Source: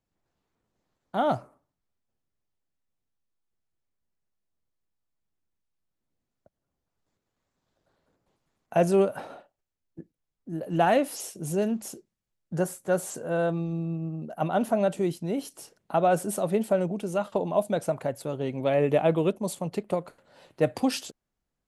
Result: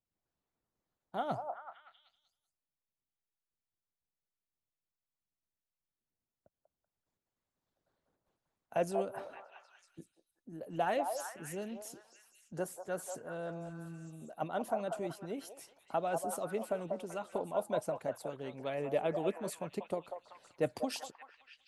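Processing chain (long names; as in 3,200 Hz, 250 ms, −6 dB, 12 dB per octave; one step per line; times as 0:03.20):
echo through a band-pass that steps 191 ms, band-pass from 780 Hz, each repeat 0.7 octaves, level −3 dB
harmonic and percussive parts rebalanced harmonic −8 dB
level −8 dB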